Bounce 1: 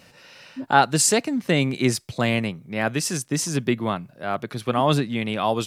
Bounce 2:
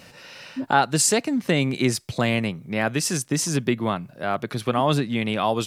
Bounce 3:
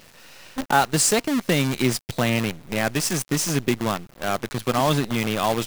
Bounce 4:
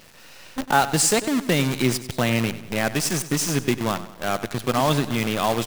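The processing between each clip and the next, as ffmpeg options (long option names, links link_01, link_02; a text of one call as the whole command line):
ffmpeg -i in.wav -af "acompressor=threshold=-30dB:ratio=1.5,volume=4.5dB" out.wav
ffmpeg -i in.wav -af "acrusher=bits=5:dc=4:mix=0:aa=0.000001" out.wav
ffmpeg -i in.wav -af "aecho=1:1:96|192|288|384:0.188|0.0885|0.0416|0.0196" out.wav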